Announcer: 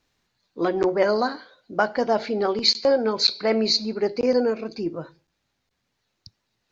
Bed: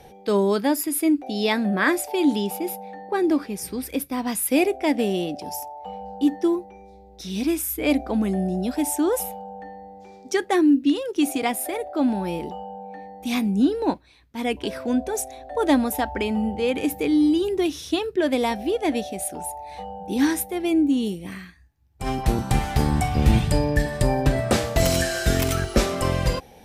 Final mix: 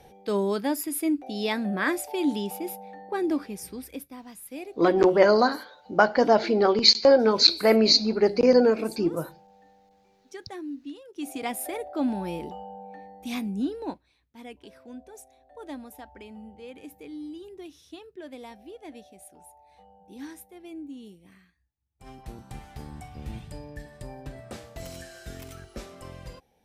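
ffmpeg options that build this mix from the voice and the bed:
-filter_complex "[0:a]adelay=4200,volume=1.33[s0];[1:a]volume=2.66,afade=t=out:st=3.46:d=0.8:silence=0.211349,afade=t=in:st=11.11:d=0.5:silence=0.199526,afade=t=out:st=12.8:d=1.79:silence=0.177828[s1];[s0][s1]amix=inputs=2:normalize=0"

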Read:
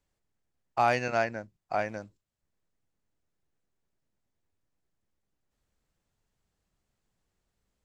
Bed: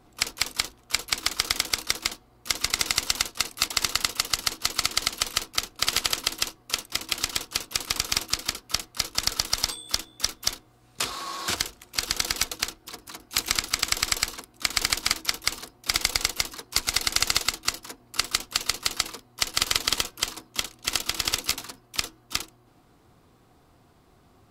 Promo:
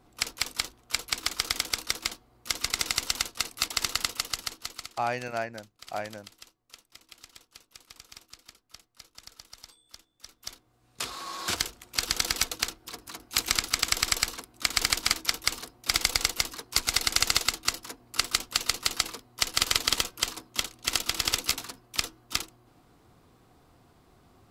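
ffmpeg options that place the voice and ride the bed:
-filter_complex "[0:a]adelay=4200,volume=0.596[s0];[1:a]volume=8.41,afade=t=out:st=4.04:d=0.93:silence=0.105925,afade=t=in:st=10.23:d=1.47:silence=0.0794328[s1];[s0][s1]amix=inputs=2:normalize=0"

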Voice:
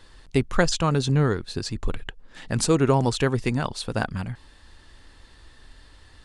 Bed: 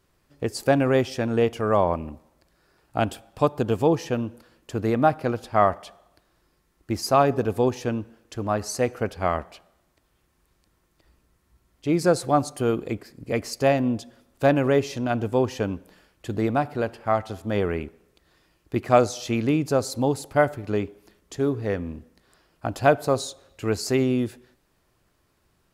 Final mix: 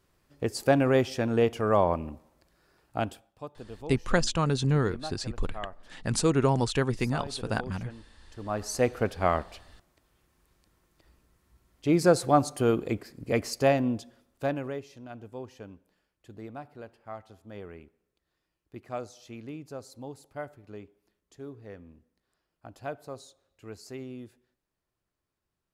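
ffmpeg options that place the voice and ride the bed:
-filter_complex "[0:a]adelay=3550,volume=0.631[s0];[1:a]volume=6.68,afade=t=out:st=2.78:d=0.57:silence=0.133352,afade=t=in:st=8.27:d=0.59:silence=0.112202,afade=t=out:st=13.39:d=1.44:silence=0.133352[s1];[s0][s1]amix=inputs=2:normalize=0"

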